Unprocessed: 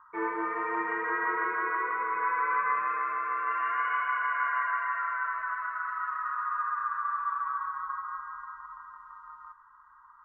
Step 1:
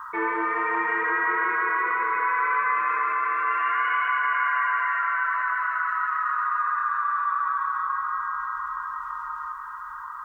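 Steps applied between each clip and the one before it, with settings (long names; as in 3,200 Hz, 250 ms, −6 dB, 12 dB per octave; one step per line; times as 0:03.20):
high-shelf EQ 2,000 Hz +11.5 dB
feedback delay with all-pass diffusion 525 ms, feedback 48%, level −13 dB
envelope flattener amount 50%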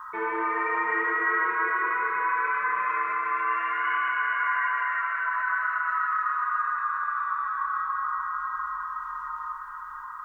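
rectangular room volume 2,800 cubic metres, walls mixed, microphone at 1.4 metres
level −4 dB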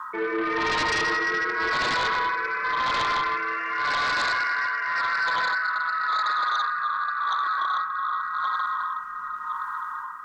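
low shelf with overshoot 130 Hz −13 dB, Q 1.5
rotating-speaker cabinet horn 0.9 Hz
sine wavefolder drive 11 dB, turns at −14.5 dBFS
level −6.5 dB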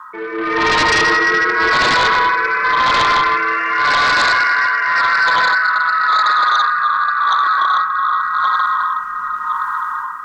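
automatic gain control gain up to 11 dB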